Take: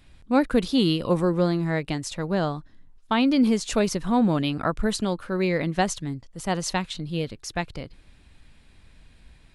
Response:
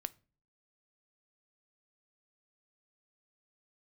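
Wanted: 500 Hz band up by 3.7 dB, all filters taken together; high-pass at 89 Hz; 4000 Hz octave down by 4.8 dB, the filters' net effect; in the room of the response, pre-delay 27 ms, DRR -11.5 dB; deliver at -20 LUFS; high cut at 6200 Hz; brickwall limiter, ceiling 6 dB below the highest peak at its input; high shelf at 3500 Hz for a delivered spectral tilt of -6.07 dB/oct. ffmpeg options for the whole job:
-filter_complex "[0:a]highpass=89,lowpass=6.2k,equalizer=f=500:t=o:g=4.5,highshelf=f=3.5k:g=4.5,equalizer=f=4k:t=o:g=-9,alimiter=limit=-14dB:level=0:latency=1,asplit=2[a][b];[1:a]atrim=start_sample=2205,adelay=27[c];[b][c]afir=irnorm=-1:irlink=0,volume=13.5dB[d];[a][d]amix=inputs=2:normalize=0,volume=-7dB"

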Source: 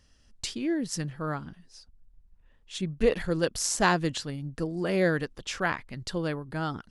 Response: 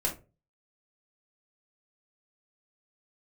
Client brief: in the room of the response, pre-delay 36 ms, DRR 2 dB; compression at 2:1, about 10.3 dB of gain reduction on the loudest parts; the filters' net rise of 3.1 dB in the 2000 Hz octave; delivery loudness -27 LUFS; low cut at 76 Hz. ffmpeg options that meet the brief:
-filter_complex "[0:a]highpass=76,equalizer=f=2k:t=o:g=4,acompressor=threshold=-36dB:ratio=2,asplit=2[a][b];[1:a]atrim=start_sample=2205,adelay=36[c];[b][c]afir=irnorm=-1:irlink=0,volume=-8dB[d];[a][d]amix=inputs=2:normalize=0,volume=6dB"

